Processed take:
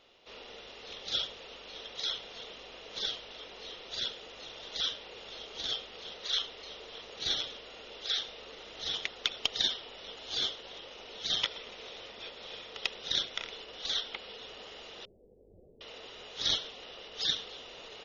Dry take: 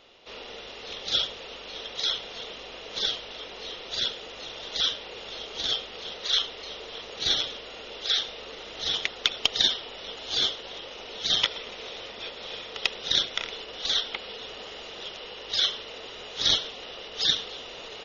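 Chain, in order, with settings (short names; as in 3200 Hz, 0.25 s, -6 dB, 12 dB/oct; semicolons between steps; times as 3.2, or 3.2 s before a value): 15.05–15.81 Gaussian blur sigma 21 samples; gain -7 dB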